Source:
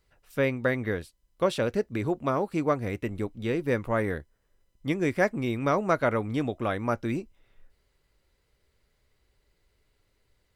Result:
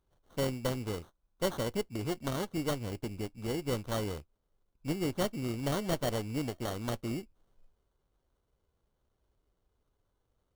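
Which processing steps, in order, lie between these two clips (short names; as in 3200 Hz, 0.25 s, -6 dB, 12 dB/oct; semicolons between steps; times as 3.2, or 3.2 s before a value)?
minimum comb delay 0.31 ms; sample-rate reducer 2500 Hz, jitter 0%; bell 1900 Hz -7 dB 0.28 oct; gain -6 dB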